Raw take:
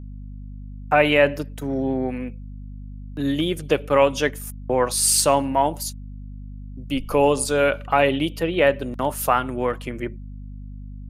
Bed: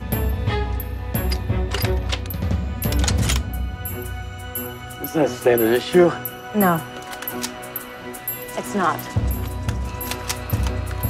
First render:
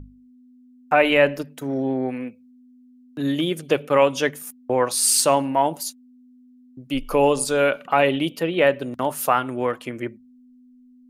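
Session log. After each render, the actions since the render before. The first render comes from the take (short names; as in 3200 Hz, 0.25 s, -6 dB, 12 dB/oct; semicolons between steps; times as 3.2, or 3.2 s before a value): notches 50/100/150/200 Hz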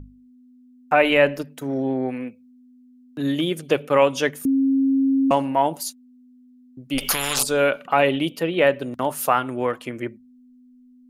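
4.45–5.31 bleep 270 Hz -15.5 dBFS; 6.98–7.43 spectral compressor 10:1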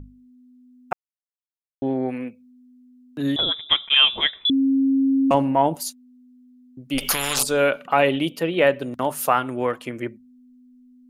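0.93–1.82 mute; 3.36–4.5 inverted band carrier 3700 Hz; 5.34–5.75 tilt -2 dB/oct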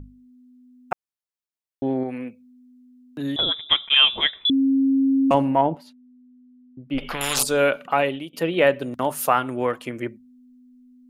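2.03–3.39 compressor 1.5:1, threshold -30 dBFS; 5.61–7.21 air absorption 420 m; 7.85–8.33 fade out, to -20 dB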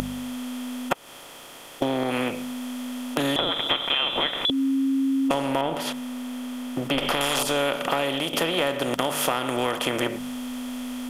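per-bin compression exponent 0.4; compressor 6:1, threshold -21 dBFS, peak gain reduction 12.5 dB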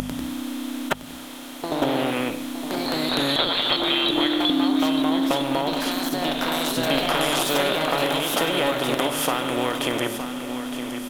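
echoes that change speed 96 ms, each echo +2 st, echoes 2; feedback echo 0.915 s, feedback 44%, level -10 dB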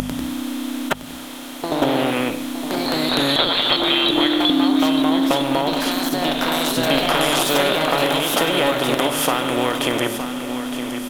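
gain +4 dB; limiter -3 dBFS, peak gain reduction 2 dB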